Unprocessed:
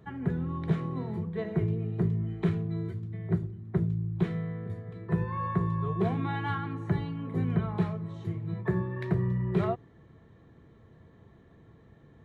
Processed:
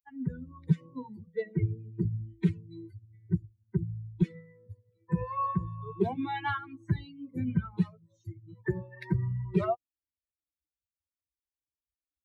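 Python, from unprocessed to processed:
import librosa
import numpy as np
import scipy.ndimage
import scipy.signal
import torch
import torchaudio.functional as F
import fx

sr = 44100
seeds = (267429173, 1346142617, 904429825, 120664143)

y = fx.bin_expand(x, sr, power=3.0)
y = y * librosa.db_to_amplitude(6.0)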